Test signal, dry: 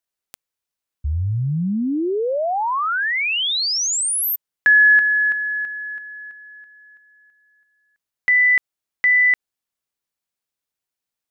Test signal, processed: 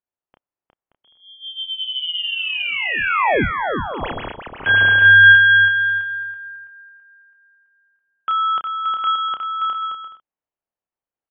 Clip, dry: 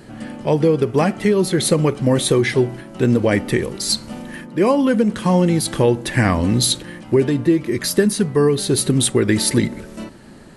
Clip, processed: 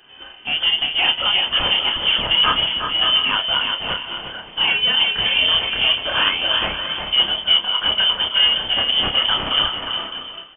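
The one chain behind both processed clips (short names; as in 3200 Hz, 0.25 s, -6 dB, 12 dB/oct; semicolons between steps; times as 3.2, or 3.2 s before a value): tracing distortion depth 0.15 ms; HPF 150 Hz 24 dB/oct; bell 2600 Hz +12 dB 0.97 oct; soft clip -12.5 dBFS; doubler 30 ms -5 dB; on a send: bouncing-ball echo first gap 0.36 s, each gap 0.6×, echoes 5; on the sum: inverted band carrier 3300 Hz; upward expander 1.5:1, over -32 dBFS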